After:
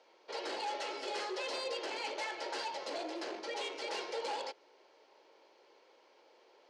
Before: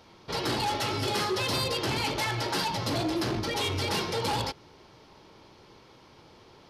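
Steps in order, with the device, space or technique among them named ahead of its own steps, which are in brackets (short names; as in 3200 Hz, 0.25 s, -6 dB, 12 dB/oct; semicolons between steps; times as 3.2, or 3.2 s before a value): phone speaker on a table (speaker cabinet 390–7400 Hz, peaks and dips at 540 Hz +5 dB, 1200 Hz -6 dB, 3600 Hz -5 dB, 5400 Hz -5 dB); gain -8 dB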